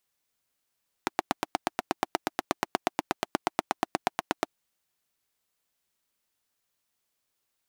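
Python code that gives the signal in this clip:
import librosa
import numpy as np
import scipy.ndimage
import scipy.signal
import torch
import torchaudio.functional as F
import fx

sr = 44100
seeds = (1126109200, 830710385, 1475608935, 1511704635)

y = fx.engine_single(sr, seeds[0], length_s=3.47, rpm=1000, resonances_hz=(330.0, 730.0))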